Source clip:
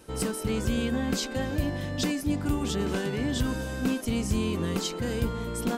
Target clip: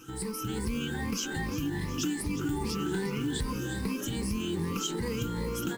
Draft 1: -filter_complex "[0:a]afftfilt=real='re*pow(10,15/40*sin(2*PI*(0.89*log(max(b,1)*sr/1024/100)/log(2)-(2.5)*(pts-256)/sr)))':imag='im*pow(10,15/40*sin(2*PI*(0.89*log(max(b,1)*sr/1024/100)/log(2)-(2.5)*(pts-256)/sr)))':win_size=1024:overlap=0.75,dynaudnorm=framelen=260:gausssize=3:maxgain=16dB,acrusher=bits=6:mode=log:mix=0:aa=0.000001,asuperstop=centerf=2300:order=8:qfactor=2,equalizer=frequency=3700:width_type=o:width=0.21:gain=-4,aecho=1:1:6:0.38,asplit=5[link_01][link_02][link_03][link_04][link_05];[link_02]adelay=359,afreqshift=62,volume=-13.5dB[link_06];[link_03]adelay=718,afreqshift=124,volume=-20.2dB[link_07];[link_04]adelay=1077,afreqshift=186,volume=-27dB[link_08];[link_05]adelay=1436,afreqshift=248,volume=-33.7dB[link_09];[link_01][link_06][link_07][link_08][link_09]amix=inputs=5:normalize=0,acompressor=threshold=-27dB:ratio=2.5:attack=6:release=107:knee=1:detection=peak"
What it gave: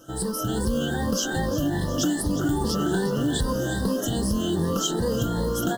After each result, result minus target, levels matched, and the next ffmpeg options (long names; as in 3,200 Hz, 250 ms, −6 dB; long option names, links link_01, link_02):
downward compressor: peak gain reduction −7 dB; 2,000 Hz band −3.0 dB
-filter_complex "[0:a]afftfilt=real='re*pow(10,15/40*sin(2*PI*(0.89*log(max(b,1)*sr/1024/100)/log(2)-(2.5)*(pts-256)/sr)))':imag='im*pow(10,15/40*sin(2*PI*(0.89*log(max(b,1)*sr/1024/100)/log(2)-(2.5)*(pts-256)/sr)))':win_size=1024:overlap=0.75,dynaudnorm=framelen=260:gausssize=3:maxgain=16dB,acrusher=bits=6:mode=log:mix=0:aa=0.000001,asuperstop=centerf=2300:order=8:qfactor=2,equalizer=frequency=3700:width_type=o:width=0.21:gain=-4,aecho=1:1:6:0.38,asplit=5[link_01][link_02][link_03][link_04][link_05];[link_02]adelay=359,afreqshift=62,volume=-13.5dB[link_06];[link_03]adelay=718,afreqshift=124,volume=-20.2dB[link_07];[link_04]adelay=1077,afreqshift=186,volume=-27dB[link_08];[link_05]adelay=1436,afreqshift=248,volume=-33.7dB[link_09];[link_01][link_06][link_07][link_08][link_09]amix=inputs=5:normalize=0,acompressor=threshold=-39dB:ratio=2.5:attack=6:release=107:knee=1:detection=peak"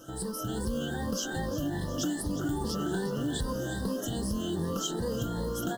2,000 Hz band −3.0 dB
-filter_complex "[0:a]afftfilt=real='re*pow(10,15/40*sin(2*PI*(0.89*log(max(b,1)*sr/1024/100)/log(2)-(2.5)*(pts-256)/sr)))':imag='im*pow(10,15/40*sin(2*PI*(0.89*log(max(b,1)*sr/1024/100)/log(2)-(2.5)*(pts-256)/sr)))':win_size=1024:overlap=0.75,dynaudnorm=framelen=260:gausssize=3:maxgain=16dB,acrusher=bits=6:mode=log:mix=0:aa=0.000001,asuperstop=centerf=610:order=8:qfactor=2,equalizer=frequency=3700:width_type=o:width=0.21:gain=-4,aecho=1:1:6:0.38,asplit=5[link_01][link_02][link_03][link_04][link_05];[link_02]adelay=359,afreqshift=62,volume=-13.5dB[link_06];[link_03]adelay=718,afreqshift=124,volume=-20.2dB[link_07];[link_04]adelay=1077,afreqshift=186,volume=-27dB[link_08];[link_05]adelay=1436,afreqshift=248,volume=-33.7dB[link_09];[link_01][link_06][link_07][link_08][link_09]amix=inputs=5:normalize=0,acompressor=threshold=-39dB:ratio=2.5:attack=6:release=107:knee=1:detection=peak"